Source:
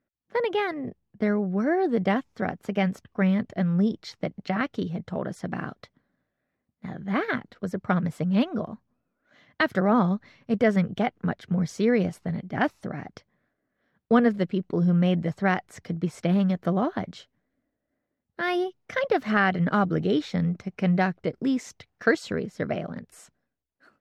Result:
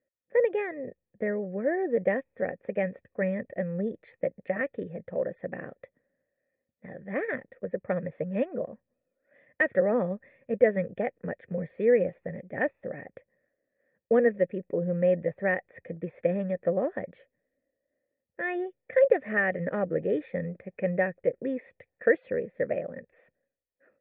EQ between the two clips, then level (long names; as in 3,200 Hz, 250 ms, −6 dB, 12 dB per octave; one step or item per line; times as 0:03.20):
formant resonators in series e
+9.0 dB